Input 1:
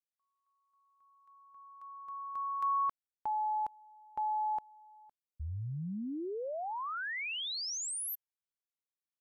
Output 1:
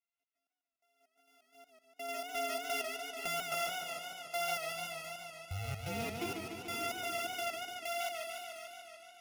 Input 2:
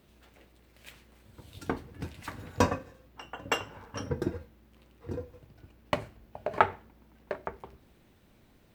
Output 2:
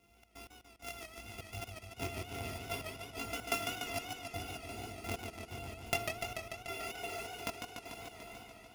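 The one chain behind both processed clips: sorted samples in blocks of 64 samples; graphic EQ with 31 bands 160 Hz -11 dB, 1.6 kHz -9 dB, 2.5 kHz +11 dB, 8 kHz -4 dB, 16 kHz -8 dB; plate-style reverb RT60 3.1 s, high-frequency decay 0.9×, DRR 10 dB; gate with hold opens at -47 dBFS, closes at -53 dBFS, hold 235 ms, range -12 dB; chorus voices 2, 0.62 Hz, delay 20 ms, depth 2 ms; compression 2:1, threshold -52 dBFS; comb of notches 590 Hz; Chebyshev shaper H 4 -18 dB, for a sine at -23.5 dBFS; trance gate "xx.x...xx." 128 bpm -60 dB; treble shelf 7.7 kHz +8 dB; modulated delay 146 ms, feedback 76%, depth 129 cents, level -5.5 dB; trim +10.5 dB

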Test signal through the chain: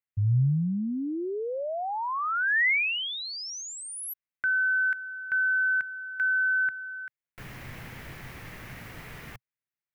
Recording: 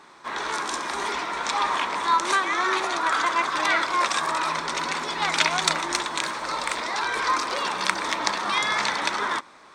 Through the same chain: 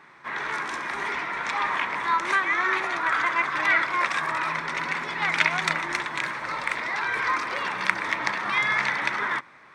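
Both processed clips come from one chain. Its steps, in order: graphic EQ 125/2000/4000/8000 Hz +11/+11/-4/-7 dB; trim -5.5 dB

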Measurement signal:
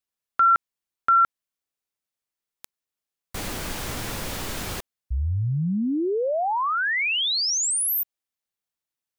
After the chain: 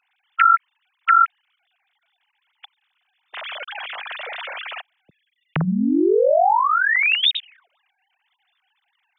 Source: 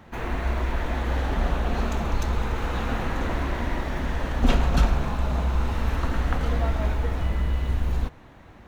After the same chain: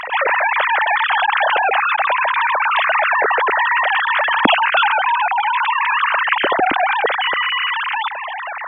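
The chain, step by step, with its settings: formants replaced by sine waves; treble shelf 2.3 kHz +11 dB; level flattener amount 50%; trim -1.5 dB

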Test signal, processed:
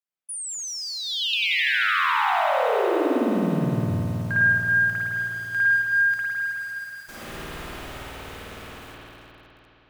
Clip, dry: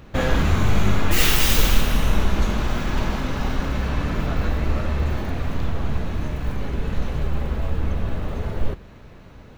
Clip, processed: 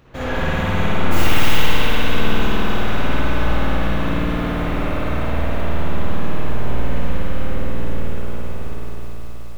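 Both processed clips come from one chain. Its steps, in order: fade out at the end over 2.74 s; bass shelf 110 Hz -7 dB; in parallel at -1.5 dB: peak limiter -16.5 dBFS; on the sum: spring tank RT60 3.5 s, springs 52 ms, chirp 80 ms, DRR -10 dB; bit-crushed delay 191 ms, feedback 80%, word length 5-bit, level -12 dB; trim -11 dB

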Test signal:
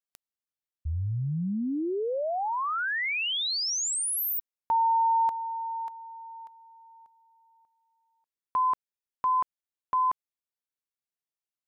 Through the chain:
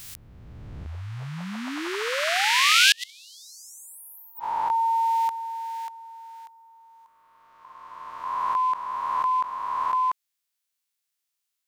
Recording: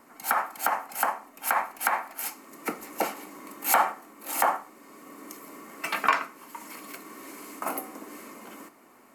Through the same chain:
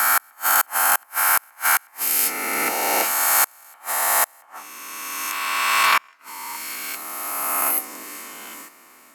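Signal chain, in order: reverse spectral sustain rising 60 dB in 2.63 s; tilt shelf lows -8 dB, about 1.1 kHz; inverted gate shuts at -6 dBFS, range -36 dB; trim +2 dB

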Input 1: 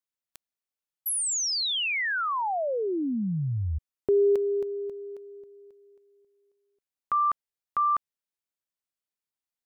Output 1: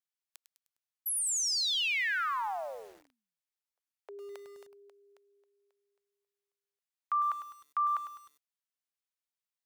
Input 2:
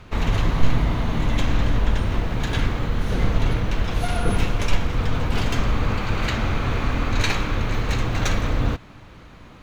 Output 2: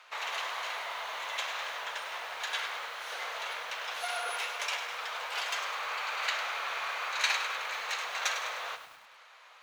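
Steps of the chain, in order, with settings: Bessel high-pass 1 kHz, order 8; treble shelf 9.1 kHz -3 dB; bit-crushed delay 102 ms, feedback 55%, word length 8-bit, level -9.5 dB; trim -2.5 dB

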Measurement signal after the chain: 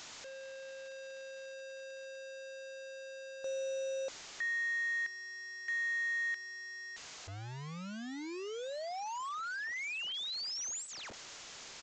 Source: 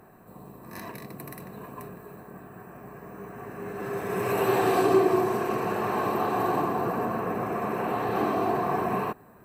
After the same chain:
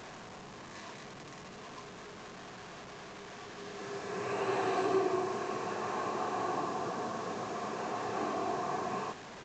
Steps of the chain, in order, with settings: one-bit delta coder 64 kbps, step -32.5 dBFS; bass shelf 320 Hz -6 dB; resampled via 16 kHz; trim -7 dB

